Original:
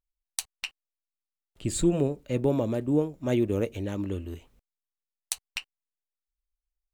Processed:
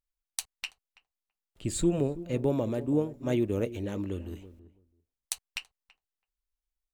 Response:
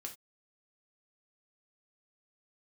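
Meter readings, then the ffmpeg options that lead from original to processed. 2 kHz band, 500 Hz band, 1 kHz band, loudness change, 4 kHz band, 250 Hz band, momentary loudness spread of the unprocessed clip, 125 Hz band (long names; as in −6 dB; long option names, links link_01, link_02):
−2.5 dB, −2.5 dB, −2.5 dB, −2.5 dB, −2.5 dB, −2.5 dB, 13 LU, −2.5 dB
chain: -filter_complex "[0:a]asplit=2[link_01][link_02];[link_02]adelay=330,lowpass=frequency=820:poles=1,volume=-14.5dB,asplit=2[link_03][link_04];[link_04]adelay=330,lowpass=frequency=820:poles=1,volume=0.15[link_05];[link_01][link_03][link_05]amix=inputs=3:normalize=0,volume=-2.5dB"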